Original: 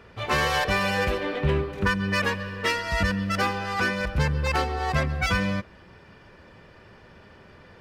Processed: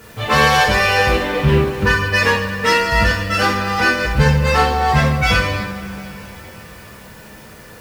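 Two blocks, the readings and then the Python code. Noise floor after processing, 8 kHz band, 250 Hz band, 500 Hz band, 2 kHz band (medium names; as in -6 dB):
-40 dBFS, +10.0 dB, +7.5 dB, +9.5 dB, +10.5 dB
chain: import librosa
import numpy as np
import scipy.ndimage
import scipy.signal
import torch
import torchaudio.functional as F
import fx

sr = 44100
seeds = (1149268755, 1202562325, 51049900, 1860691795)

y = fx.dmg_noise_colour(x, sr, seeds[0], colour='white', level_db=-57.0)
y = fx.rev_double_slope(y, sr, seeds[1], early_s=0.51, late_s=4.9, knee_db=-21, drr_db=-4.5)
y = F.gain(torch.from_numpy(y), 4.0).numpy()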